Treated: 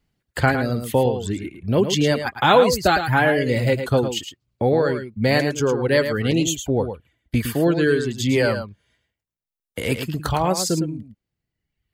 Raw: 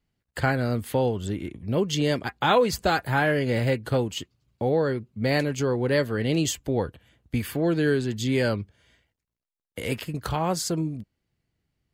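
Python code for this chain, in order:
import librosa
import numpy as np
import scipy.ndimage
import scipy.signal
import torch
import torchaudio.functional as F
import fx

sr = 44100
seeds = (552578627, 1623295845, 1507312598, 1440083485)

y = fx.dereverb_blind(x, sr, rt60_s=1.3)
y = fx.env_flanger(y, sr, rest_ms=4.6, full_db=-24.0, at=(6.31, 7.35))
y = y + 10.0 ** (-8.5 / 20.0) * np.pad(y, (int(109 * sr / 1000.0), 0))[:len(y)]
y = y * 10.0 ** (6.0 / 20.0)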